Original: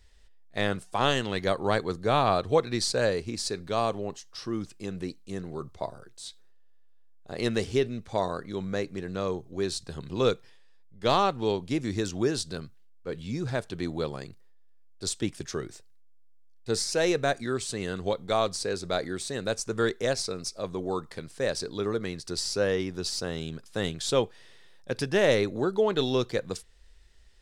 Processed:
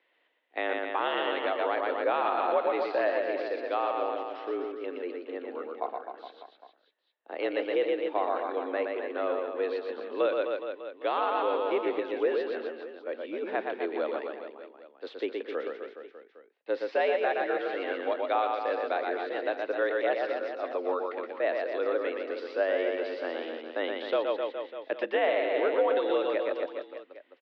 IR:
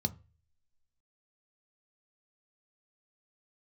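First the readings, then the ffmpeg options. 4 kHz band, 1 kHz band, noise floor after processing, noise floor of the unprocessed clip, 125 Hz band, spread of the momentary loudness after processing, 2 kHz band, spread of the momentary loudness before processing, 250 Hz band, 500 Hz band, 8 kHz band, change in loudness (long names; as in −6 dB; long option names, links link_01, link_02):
−9.0 dB, +1.0 dB, −67 dBFS, −52 dBFS, below −30 dB, 12 LU, +0.5 dB, 13 LU, −6.0 dB, +0.5 dB, below −35 dB, −1.0 dB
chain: -af "aecho=1:1:120|258|416.7|599.2|809.1:0.631|0.398|0.251|0.158|0.1,alimiter=limit=-15.5dB:level=0:latency=1:release=173,highpass=frequency=240:width_type=q:width=0.5412,highpass=frequency=240:width_type=q:width=1.307,lowpass=frequency=3000:width_type=q:width=0.5176,lowpass=frequency=3000:width_type=q:width=0.7071,lowpass=frequency=3000:width_type=q:width=1.932,afreqshift=80"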